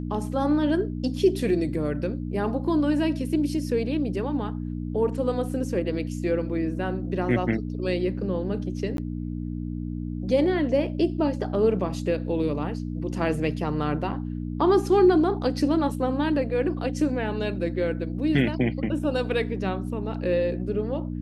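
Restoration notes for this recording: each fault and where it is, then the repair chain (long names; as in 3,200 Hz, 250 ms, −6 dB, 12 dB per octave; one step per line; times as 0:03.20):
mains hum 60 Hz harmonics 5 −31 dBFS
0:08.97–0:08.98: drop-out 12 ms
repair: hum removal 60 Hz, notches 5
repair the gap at 0:08.97, 12 ms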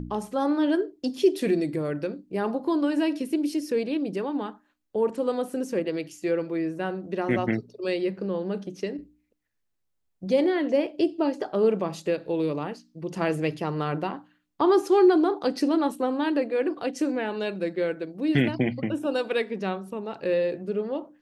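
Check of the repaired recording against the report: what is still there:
none of them is left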